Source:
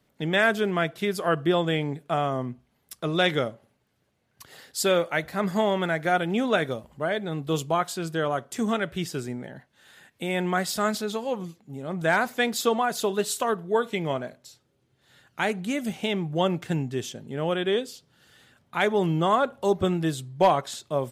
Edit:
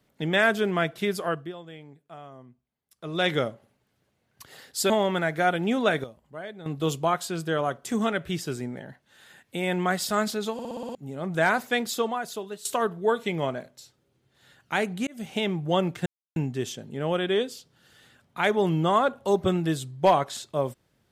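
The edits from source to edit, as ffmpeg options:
ffmpeg -i in.wav -filter_complex "[0:a]asplit=16[link_01][link_02][link_03][link_04][link_05][link_06][link_07][link_08][link_09][link_10][link_11][link_12][link_13][link_14][link_15][link_16];[link_01]atrim=end=1.53,asetpts=PTS-STARTPTS,afade=type=out:start_time=1.13:duration=0.4:silence=0.11885[link_17];[link_02]atrim=start=1.53:end=2.94,asetpts=PTS-STARTPTS,volume=-18.5dB[link_18];[link_03]atrim=start=2.94:end=4.902,asetpts=PTS-STARTPTS,afade=type=in:duration=0.4:silence=0.11885[link_19];[link_04]atrim=start=5.568:end=6.712[link_20];[link_05]atrim=start=6.708:end=7.332,asetpts=PTS-STARTPTS,volume=-11dB[link_21];[link_06]atrim=start=7.328:end=11.262[link_22];[link_07]atrim=start=11.198:end=11.262[link_23];[link_08]atrim=start=11.198:end=11.262[link_24];[link_09]atrim=start=11.198:end=11.262[link_25];[link_10]atrim=start=11.198:end=11.262[link_26];[link_11]atrim=start=11.198:end=11.262[link_27];[link_12]atrim=start=11.198:end=11.262[link_28];[link_13]atrim=start=11.618:end=13.32,asetpts=PTS-STARTPTS,afade=type=out:start_time=0.652:duration=1.05:silence=0.158489[link_29];[link_14]atrim=start=13.32:end=15.74,asetpts=PTS-STARTPTS,afade=type=in:duration=0.004:curve=hsin:silence=0.158489,afade=type=out:start_time=2.416:duration=0.004:curve=hsin[link_30];[link_15]atrim=start=15.74:end=16.73,asetpts=PTS-STARTPTS,afade=type=in:duration=0.29,afade=type=out:start_time=0.986:duration=0.004:curve=hsin,apad=pad_dur=0.3[link_31];[link_16]atrim=start=16.73,asetpts=PTS-STARTPTS,afade=type=in:duration=0.004:curve=hsin[link_32];[link_17][link_18][link_19]concat=n=3:v=0:a=1[link_33];[link_33][link_20]acrossfade=duration=0.004:curve1=hsin:curve2=hsin[link_34];[link_34][link_21]acrossfade=duration=0.004:curve1=hsin:curve2=hsin[link_35];[link_35][link_22]acrossfade=duration=0.004:curve1=hsin:curve2=hsin[link_36];[link_36][link_23]acrossfade=duration=0.004:curve1=hsin:curve2=hsin[link_37];[link_37][link_24]acrossfade=duration=0.004:curve1=hsin:curve2=hsin[link_38];[link_38][link_25]acrossfade=duration=0.004:curve1=hsin:curve2=hsin[link_39];[link_39][link_26]acrossfade=duration=0.004:curve1=hsin:curve2=hsin[link_40];[link_40][link_27]acrossfade=duration=0.004:curve1=hsin:curve2=hsin[link_41];[link_41][link_28]acrossfade=duration=0.004:curve1=hsin:curve2=hsin[link_42];[link_29][link_30][link_31][link_32]concat=n=4:v=0:a=1[link_43];[link_42][link_43]acrossfade=duration=0.004:curve1=hsin:curve2=hsin" out.wav

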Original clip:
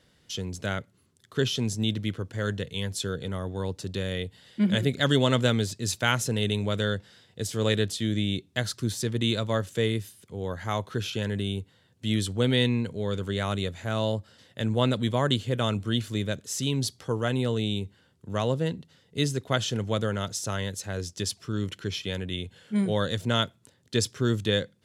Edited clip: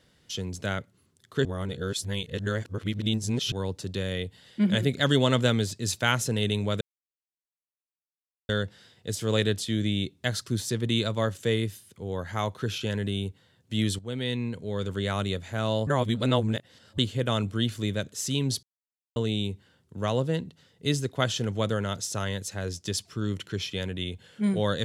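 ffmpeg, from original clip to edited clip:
ffmpeg -i in.wav -filter_complex "[0:a]asplit=9[link_01][link_02][link_03][link_04][link_05][link_06][link_07][link_08][link_09];[link_01]atrim=end=1.452[link_10];[link_02]atrim=start=1.448:end=3.522,asetpts=PTS-STARTPTS,areverse[link_11];[link_03]atrim=start=3.518:end=6.81,asetpts=PTS-STARTPTS,afade=type=out:start_time=3.288:duration=0.004:curve=hsin,apad=pad_dur=1.68[link_12];[link_04]atrim=start=6.81:end=12.31,asetpts=PTS-STARTPTS,afade=type=in:duration=0.004:curve=hsin,afade=type=out:start_time=5.496:duration=0.004:curve=hsin:silence=0.223872[link_13];[link_05]atrim=start=12.31:end=14.192,asetpts=PTS-STARTPTS,afade=type=in:duration=0.97:silence=0.223872[link_14];[link_06]atrim=start=14.188:end=15.302,asetpts=PTS-STARTPTS,areverse[link_15];[link_07]atrim=start=15.298:end=16.95,asetpts=PTS-STARTPTS,afade=type=out:start_time=1.648:duration=0.004:curve=hsin[link_16];[link_08]atrim=start=16.95:end=17.48,asetpts=PTS-STARTPTS,volume=0[link_17];[link_09]atrim=start=17.48,asetpts=PTS-STARTPTS,afade=type=in:duration=0.004:curve=hsin[link_18];[link_10][link_11]acrossfade=duration=0.004:curve1=hsin:curve2=hsin[link_19];[link_12][link_13][link_14]concat=n=3:v=0:a=1[link_20];[link_19][link_20]acrossfade=duration=0.004:curve1=hsin:curve2=hsin[link_21];[link_21][link_15]acrossfade=duration=0.004:curve1=hsin:curve2=hsin[link_22];[link_16][link_17][link_18]concat=n=3:v=0:a=1[link_23];[link_22][link_23]acrossfade=duration=0.004:curve1=hsin:curve2=hsin" out.wav

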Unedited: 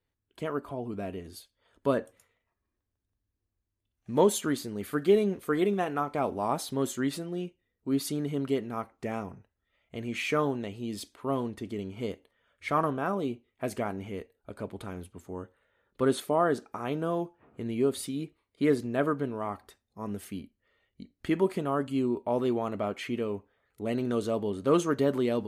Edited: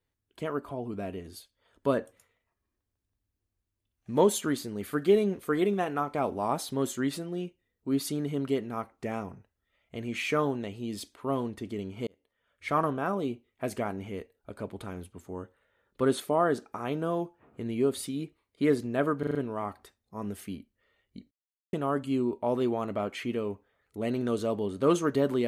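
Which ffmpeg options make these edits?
ffmpeg -i in.wav -filter_complex "[0:a]asplit=8[link_01][link_02][link_03][link_04][link_05][link_06][link_07][link_08];[link_01]atrim=end=12.07,asetpts=PTS-STARTPTS,afade=type=out:start_time=12.066:duration=0.004:curve=hsin[link_09];[link_02]atrim=start=12.07:end=19.232,asetpts=PTS-STARTPTS,afade=type=in:duration=0.65[link_10];[link_03]atrim=start=19.188:end=19.232[link_11];[link_04]atrim=start=19.188:end=19.232[link_12];[link_05]atrim=start=19.188:end=19.232[link_13];[link_06]atrim=start=19.188:end=21.15,asetpts=PTS-STARTPTS,afade=type=out:start_time=1.958:duration=0.004:curve=hsin[link_14];[link_07]atrim=start=21.15:end=21.57,asetpts=PTS-STARTPTS,volume=0[link_15];[link_08]atrim=start=21.57,asetpts=PTS-STARTPTS,afade=type=in:duration=0.004:curve=hsin[link_16];[link_09][link_10]concat=n=2:v=0:a=1[link_17];[link_17][link_11]acrossfade=duration=0.004:curve1=hsin:curve2=hsin[link_18];[link_18][link_12]acrossfade=duration=0.004:curve1=hsin:curve2=hsin[link_19];[link_19][link_13]acrossfade=duration=0.004:curve1=hsin:curve2=hsin[link_20];[link_14][link_15][link_16]concat=n=3:v=0:a=1[link_21];[link_20][link_21]acrossfade=duration=0.004:curve1=hsin:curve2=hsin" out.wav

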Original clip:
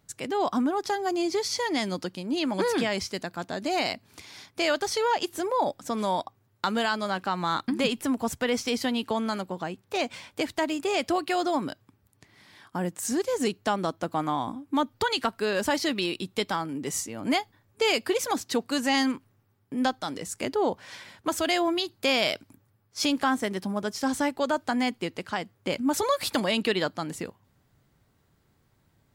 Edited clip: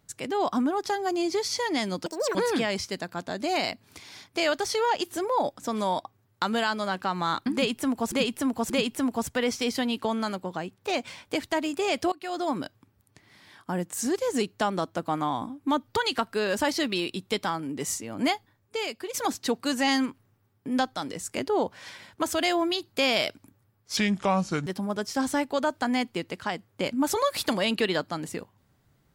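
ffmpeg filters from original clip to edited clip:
ffmpeg -i in.wav -filter_complex "[0:a]asplit=9[link_01][link_02][link_03][link_04][link_05][link_06][link_07][link_08][link_09];[link_01]atrim=end=2.064[link_10];[link_02]atrim=start=2.06:end=2.57,asetpts=PTS-STARTPTS,asetrate=77616,aresample=44100[link_11];[link_03]atrim=start=2.566:end=8.342[link_12];[link_04]atrim=start=7.758:end=8.342[link_13];[link_05]atrim=start=7.758:end=11.18,asetpts=PTS-STARTPTS,afade=type=out:start_time=3.418:duration=0.004:curve=hsin:silence=0.0891251[link_14];[link_06]atrim=start=11.18:end=18.2,asetpts=PTS-STARTPTS,afade=type=in:duration=0.44:silence=0.0891251,afade=type=out:start_time=6.23:duration=0.79:curve=qua:silence=0.316228[link_15];[link_07]atrim=start=18.2:end=23.034,asetpts=PTS-STARTPTS,afade=type=in:duration=0.004:curve=hsin:silence=0.316228[link_16];[link_08]atrim=start=23.03:end=23.53,asetpts=PTS-STARTPTS,asetrate=31752,aresample=44100[link_17];[link_09]atrim=start=23.526[link_18];[link_10][link_11]acrossfade=duration=0.004:curve1=hsin:curve2=hsin[link_19];[link_19][link_12]acrossfade=duration=0.004:curve1=hsin:curve2=hsin[link_20];[link_20][link_13]acrossfade=duration=0.004:curve1=hsin:curve2=hsin[link_21];[link_14][link_15][link_16]concat=n=3:v=0:a=1[link_22];[link_21][link_22]acrossfade=duration=0.004:curve1=hsin:curve2=hsin[link_23];[link_23][link_17]acrossfade=duration=0.004:curve1=hsin:curve2=hsin[link_24];[link_24][link_18]acrossfade=duration=0.004:curve1=hsin:curve2=hsin" out.wav

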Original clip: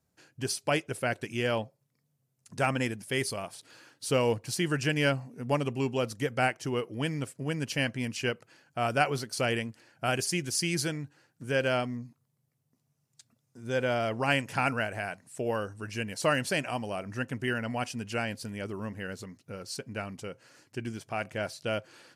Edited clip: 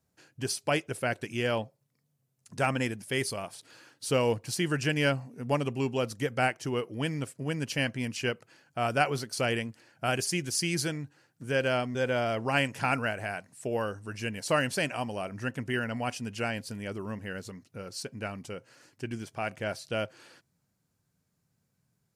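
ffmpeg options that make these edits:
ffmpeg -i in.wav -filter_complex "[0:a]asplit=2[link_01][link_02];[link_01]atrim=end=11.952[link_03];[link_02]atrim=start=13.688[link_04];[link_03][link_04]acrossfade=duration=0.004:curve1=hsin:curve2=hsin" out.wav

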